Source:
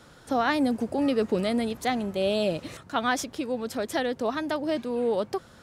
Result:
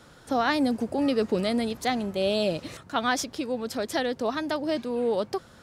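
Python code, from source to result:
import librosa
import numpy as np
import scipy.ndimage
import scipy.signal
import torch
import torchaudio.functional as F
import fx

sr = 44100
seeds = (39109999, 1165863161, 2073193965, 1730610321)

y = fx.dynamic_eq(x, sr, hz=4800.0, q=2.0, threshold_db=-50.0, ratio=4.0, max_db=5)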